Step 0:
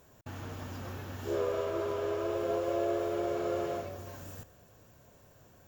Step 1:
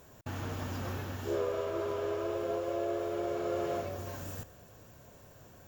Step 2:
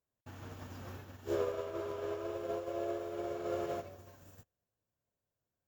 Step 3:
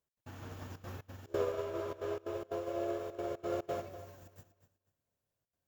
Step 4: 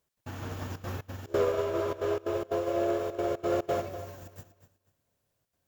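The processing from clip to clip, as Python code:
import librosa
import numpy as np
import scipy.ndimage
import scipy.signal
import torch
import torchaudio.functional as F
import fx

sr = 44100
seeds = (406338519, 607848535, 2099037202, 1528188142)

y1 = fx.rider(x, sr, range_db=4, speed_s=0.5)
y2 = fx.upward_expand(y1, sr, threshold_db=-54.0, expansion=2.5)
y3 = fx.step_gate(y2, sr, bpm=179, pattern='x.xxxxxxx.xx.x', floor_db=-24.0, edge_ms=4.5)
y3 = fx.echo_feedback(y3, sr, ms=244, feedback_pct=26, wet_db=-13.5)
y3 = F.gain(torch.from_numpy(y3), 1.0).numpy()
y4 = 10.0 ** (-27.0 / 20.0) * np.tanh(y3 / 10.0 ** (-27.0 / 20.0))
y4 = F.gain(torch.from_numpy(y4), 9.0).numpy()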